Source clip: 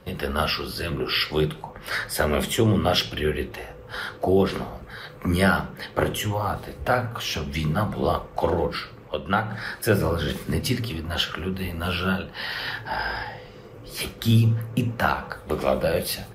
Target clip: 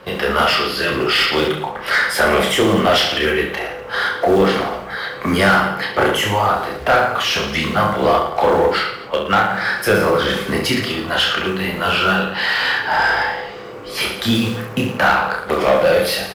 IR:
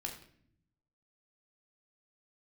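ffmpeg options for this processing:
-filter_complex "[0:a]acrusher=bits=7:mode=log:mix=0:aa=0.000001,aecho=1:1:30|67.5|114.4|173|246.2:0.631|0.398|0.251|0.158|0.1,asplit=2[a][b];[b]highpass=f=720:p=1,volume=20dB,asoftclip=type=tanh:threshold=-3.5dB[c];[a][c]amix=inputs=2:normalize=0,lowpass=f=2.7k:p=1,volume=-6dB"

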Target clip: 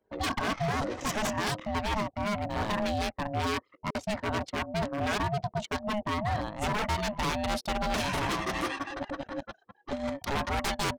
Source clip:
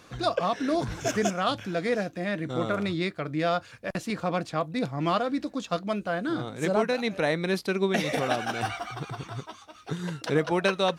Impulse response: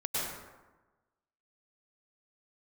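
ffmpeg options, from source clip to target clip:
-af "anlmdn=0.398,aeval=exprs='0.0631*(abs(mod(val(0)/0.0631+3,4)-2)-1)':c=same,aeval=exprs='val(0)*sin(2*PI*420*n/s)':c=same,volume=3dB"

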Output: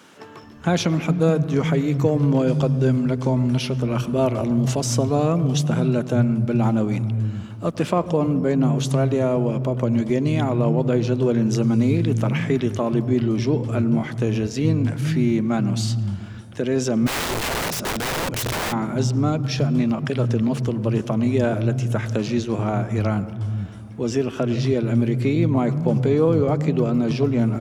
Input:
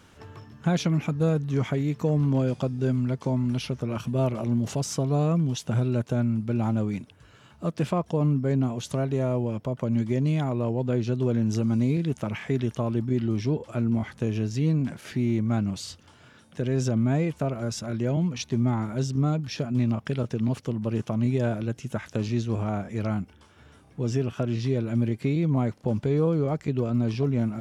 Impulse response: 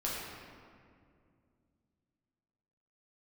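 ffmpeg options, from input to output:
-filter_complex "[0:a]acrossover=split=160[a][b];[a]adelay=430[c];[c][b]amix=inputs=2:normalize=0,asplit=2[d][e];[1:a]atrim=start_sample=2205,highshelf=f=2.6k:g=-9.5,adelay=99[f];[e][f]afir=irnorm=-1:irlink=0,volume=-18dB[g];[d][g]amix=inputs=2:normalize=0,asplit=3[h][i][j];[h]afade=t=out:st=17.06:d=0.02[k];[i]aeval=exprs='(mod(22.4*val(0)+1,2)-1)/22.4':c=same,afade=t=in:st=17.06:d=0.02,afade=t=out:st=18.71:d=0.02[l];[j]afade=t=in:st=18.71:d=0.02[m];[k][l][m]amix=inputs=3:normalize=0,volume=7dB"

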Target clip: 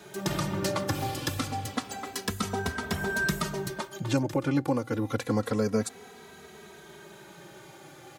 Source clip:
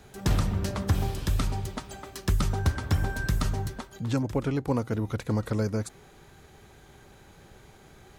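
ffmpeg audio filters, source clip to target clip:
-filter_complex "[0:a]highpass=190,alimiter=limit=-21dB:level=0:latency=1:release=375,asplit=2[a][b];[b]adelay=2.8,afreqshift=-0.28[c];[a][c]amix=inputs=2:normalize=1,volume=9dB"

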